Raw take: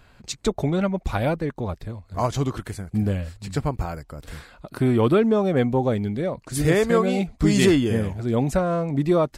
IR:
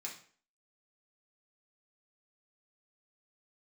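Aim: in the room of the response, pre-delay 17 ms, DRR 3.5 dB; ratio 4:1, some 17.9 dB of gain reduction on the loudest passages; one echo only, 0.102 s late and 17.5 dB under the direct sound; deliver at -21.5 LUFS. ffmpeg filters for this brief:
-filter_complex "[0:a]acompressor=threshold=-36dB:ratio=4,aecho=1:1:102:0.133,asplit=2[a][b];[1:a]atrim=start_sample=2205,adelay=17[c];[b][c]afir=irnorm=-1:irlink=0,volume=-2dB[d];[a][d]amix=inputs=2:normalize=0,volume=15dB"

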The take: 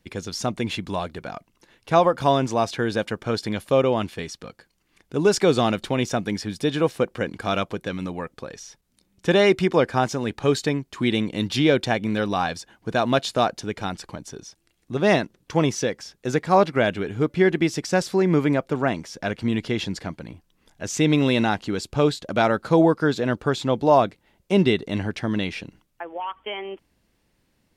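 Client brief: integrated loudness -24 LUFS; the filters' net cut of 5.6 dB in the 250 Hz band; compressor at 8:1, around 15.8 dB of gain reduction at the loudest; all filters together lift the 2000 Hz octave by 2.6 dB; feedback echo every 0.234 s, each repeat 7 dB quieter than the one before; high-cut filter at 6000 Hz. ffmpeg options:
-af "lowpass=6k,equalizer=f=250:t=o:g=-8,equalizer=f=2k:t=o:g=3.5,acompressor=threshold=-29dB:ratio=8,aecho=1:1:234|468|702|936|1170:0.447|0.201|0.0905|0.0407|0.0183,volume=9.5dB"

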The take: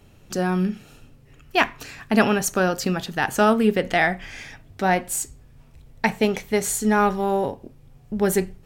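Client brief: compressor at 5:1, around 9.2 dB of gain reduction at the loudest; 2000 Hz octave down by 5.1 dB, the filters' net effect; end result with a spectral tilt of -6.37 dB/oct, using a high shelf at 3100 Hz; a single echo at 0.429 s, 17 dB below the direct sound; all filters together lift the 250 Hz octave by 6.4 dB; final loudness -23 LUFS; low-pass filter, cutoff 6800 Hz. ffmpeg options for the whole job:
-af "lowpass=6.8k,equalizer=f=250:t=o:g=8.5,equalizer=f=2k:t=o:g=-5,highshelf=f=3.1k:g=-5,acompressor=threshold=-18dB:ratio=5,aecho=1:1:429:0.141,volume=1.5dB"

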